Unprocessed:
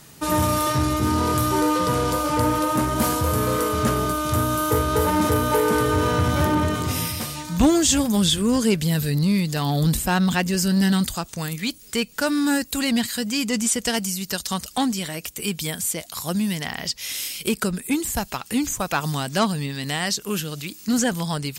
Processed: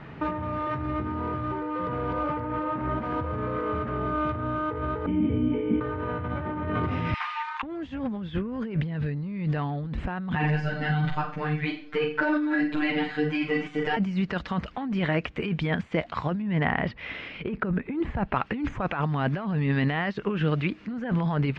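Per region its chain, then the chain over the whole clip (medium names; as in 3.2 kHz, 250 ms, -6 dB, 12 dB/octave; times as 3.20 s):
5.06–5.81 s: cascade formant filter i + hum notches 50/100/150/200/250/300/350/400/450 Hz
7.14–7.63 s: steep high-pass 840 Hz 72 dB/octave + transformer saturation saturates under 2.2 kHz
10.35–13.97 s: robot voice 151 Hz + flutter echo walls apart 7.5 m, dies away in 0.42 s + three-phase chorus
16.42–18.36 s: low-pass 5.6 kHz + treble shelf 2.8 kHz -9 dB
whole clip: compressor with a negative ratio -29 dBFS, ratio -1; low-pass 2.3 kHz 24 dB/octave; trim +2 dB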